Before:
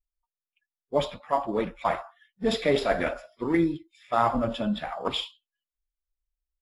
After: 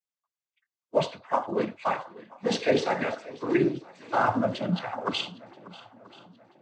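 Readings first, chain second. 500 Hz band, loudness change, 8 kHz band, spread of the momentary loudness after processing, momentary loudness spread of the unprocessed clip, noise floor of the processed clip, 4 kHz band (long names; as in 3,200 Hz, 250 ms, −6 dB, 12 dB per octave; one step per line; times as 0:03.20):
−0.5 dB, −0.5 dB, +2.0 dB, 19 LU, 8 LU, below −85 dBFS, −1.0 dB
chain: cochlear-implant simulation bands 16
feedback echo with a long and a short gap by turns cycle 982 ms, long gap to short 1.5 to 1, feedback 37%, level −19.5 dB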